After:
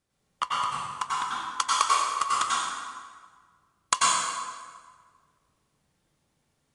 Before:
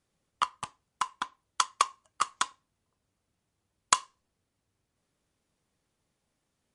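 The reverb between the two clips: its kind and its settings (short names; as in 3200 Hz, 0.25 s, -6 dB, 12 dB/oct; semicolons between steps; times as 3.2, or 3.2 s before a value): plate-style reverb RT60 1.6 s, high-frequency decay 0.75×, pre-delay 80 ms, DRR -6.5 dB; gain -1.5 dB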